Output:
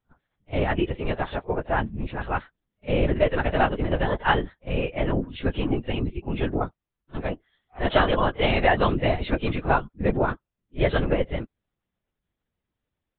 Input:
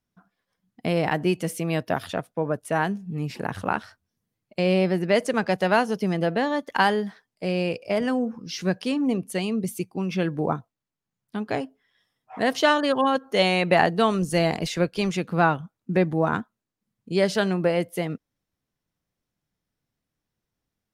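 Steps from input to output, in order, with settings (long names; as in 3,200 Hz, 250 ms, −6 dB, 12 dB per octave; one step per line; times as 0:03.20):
linear-prediction vocoder at 8 kHz whisper
echo ahead of the sound 76 ms −21.5 dB
time stretch by phase vocoder 0.63×
level +3.5 dB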